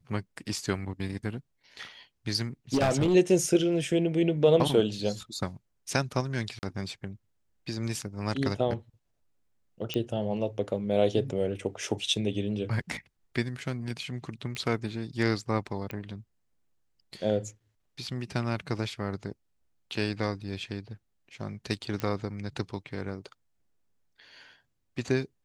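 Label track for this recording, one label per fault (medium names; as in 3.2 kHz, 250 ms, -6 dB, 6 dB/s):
2.740000	3.150000	clipped -20 dBFS
6.590000	6.630000	dropout 39 ms
9.940000	9.940000	pop -16 dBFS
14.550000	14.550000	pop -23 dBFS
15.910000	15.910000	pop -22 dBFS
22.000000	22.000000	pop -17 dBFS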